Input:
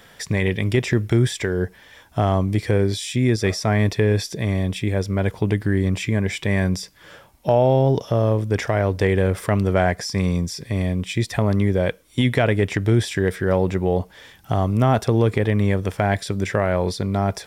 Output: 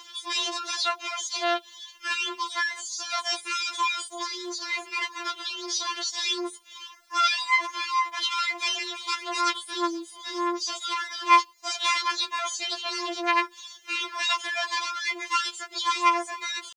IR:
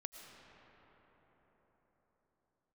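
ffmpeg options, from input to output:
-af "aresample=11025,aeval=exprs='0.141*(abs(mod(val(0)/0.141+3,4)-2)-1)':c=same,aresample=44100,asetrate=45938,aresample=44100,highpass=f=240:w=0.5412,highpass=f=240:w=1.3066,equalizer=f=260:t=q:w=4:g=-5,equalizer=f=410:t=q:w=4:g=-7,equalizer=f=600:t=q:w=4:g=9,equalizer=f=1.2k:t=q:w=4:g=8,equalizer=f=1.9k:t=q:w=4:g=5,equalizer=f=2.9k:t=q:w=4:g=5,lowpass=f=3.5k:w=0.5412,lowpass=f=3.5k:w=1.3066,crystalizer=i=3:c=0,acompressor=mode=upward:threshold=-33dB:ratio=2.5,asetrate=80880,aresample=44100,atempo=0.545254,acrusher=bits=9:mix=0:aa=0.000001,afftfilt=real='re*4*eq(mod(b,16),0)':imag='im*4*eq(mod(b,16),0)':win_size=2048:overlap=0.75,volume=-3dB"

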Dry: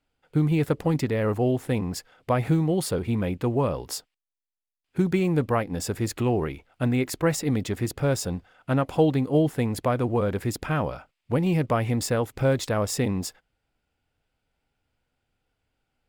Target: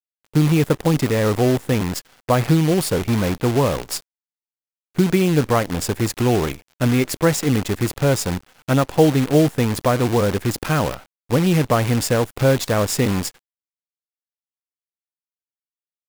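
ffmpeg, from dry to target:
-af "acrusher=bits=6:dc=4:mix=0:aa=0.000001,volume=6dB"

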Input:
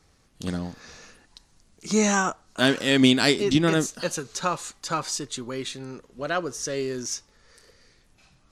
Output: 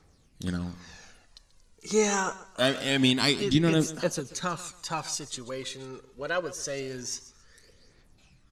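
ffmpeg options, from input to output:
-af "aphaser=in_gain=1:out_gain=1:delay=2.4:decay=0.51:speed=0.25:type=triangular,aecho=1:1:137|274|411:0.141|0.0381|0.0103,volume=-4.5dB"

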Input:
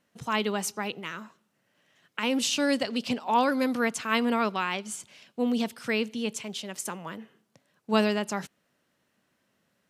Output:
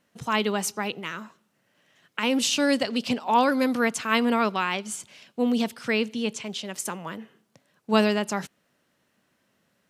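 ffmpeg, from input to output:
-filter_complex "[0:a]asettb=1/sr,asplit=3[a][b][c];[a]atrim=end=5.724[d];[b]atrim=start=5.72:end=6.67,asetpts=PTS-STARTPTS,afade=t=in:d=0.004:c=qsin,afade=t=out:st=0.946:d=0.004:c=qsin,acrossover=split=7900[e][f];[f]acompressor=threshold=-60dB:ratio=4:attack=1:release=60[g];[e][g]amix=inputs=2:normalize=0[h];[c]atrim=start=6.666[i];[d][h]acrossfade=d=0.004:c1=hsin:c2=qsin[j];[j][i]acrossfade=d=0.004:c1=qsin:c2=hsin,volume=3dB"

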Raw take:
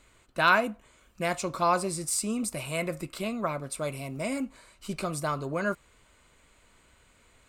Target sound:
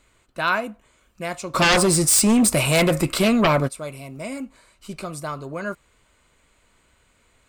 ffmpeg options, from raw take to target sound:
-filter_complex "[0:a]asplit=3[a][b][c];[a]afade=t=out:st=1.54:d=0.02[d];[b]aeval=exprs='0.237*sin(PI/2*4.47*val(0)/0.237)':c=same,afade=t=in:st=1.54:d=0.02,afade=t=out:st=3.67:d=0.02[e];[c]afade=t=in:st=3.67:d=0.02[f];[d][e][f]amix=inputs=3:normalize=0"

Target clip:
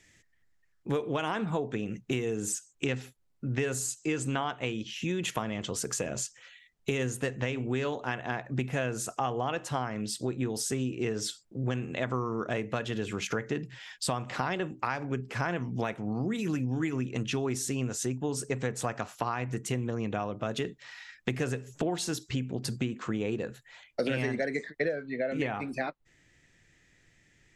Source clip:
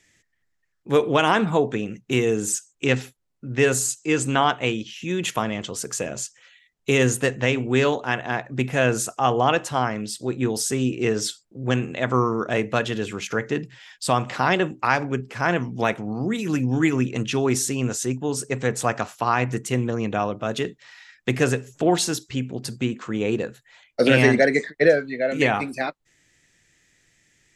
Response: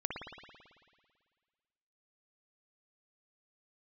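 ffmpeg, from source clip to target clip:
-af "lowshelf=f=120:g=5,acompressor=threshold=-28dB:ratio=6,asetnsamples=n=441:p=0,asendcmd='24.89 highshelf g -12',highshelf=f=4.9k:g=-2"

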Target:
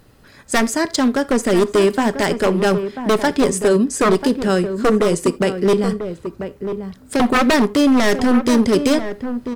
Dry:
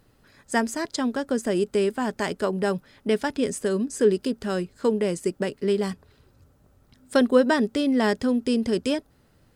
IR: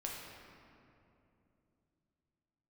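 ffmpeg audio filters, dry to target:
-filter_complex "[0:a]asettb=1/sr,asplit=3[a][b][c];[a]atrim=end=5.734[d];[b]atrim=start=5.73:end=7.2,asetpts=PTS-STARTPTS,afade=t=in:d=0.004:c=qsin,afade=t=out:st=1.466:d=0.004:c=qsin,acrossover=split=260[e][f];[f]acompressor=threshold=-35dB:ratio=2[g];[e][g]amix=inputs=2:normalize=0[h];[c]atrim=start=7.196[i];[d][h]acrossfade=d=0.004:c1=hsin:c2=qsin[j];[j][i]acrossfade=d=0.004:c1=qsin:c2=hsin,aeval=exprs='0.119*(abs(mod(val(0)/0.119+3,4)-2)-1)':c=same,asplit=2[k][l];[l]adelay=991.3,volume=-9dB,highshelf=f=4k:g=-22.3[m];[k][m]amix=inputs=2:normalize=0,asplit=2[n][o];[1:a]atrim=start_sample=2205,atrim=end_sample=3969[p];[o][p]afir=irnorm=-1:irlink=0,volume=-9dB[q];[n][q]amix=inputs=2:normalize=0,volume=8dB"

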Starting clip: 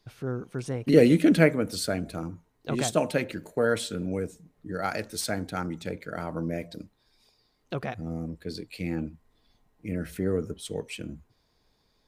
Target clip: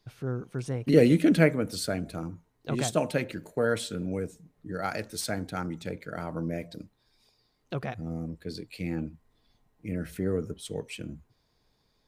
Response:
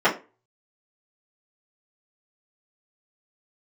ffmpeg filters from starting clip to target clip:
-af "equalizer=f=130:t=o:w=0.65:g=3.5,volume=-2dB"

